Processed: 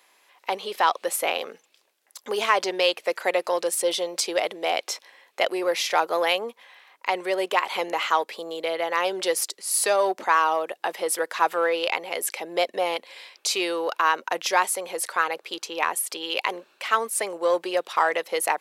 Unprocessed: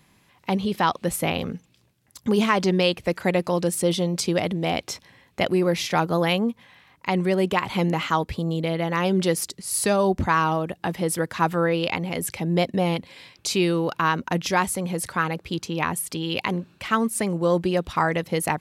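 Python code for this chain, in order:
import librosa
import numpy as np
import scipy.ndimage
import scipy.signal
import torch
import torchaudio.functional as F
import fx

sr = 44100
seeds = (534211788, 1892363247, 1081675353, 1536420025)

p1 = np.clip(x, -10.0 ** (-20.0 / 20.0), 10.0 ** (-20.0 / 20.0))
p2 = x + (p1 * librosa.db_to_amplitude(-11.5))
y = scipy.signal.sosfilt(scipy.signal.butter(4, 450.0, 'highpass', fs=sr, output='sos'), p2)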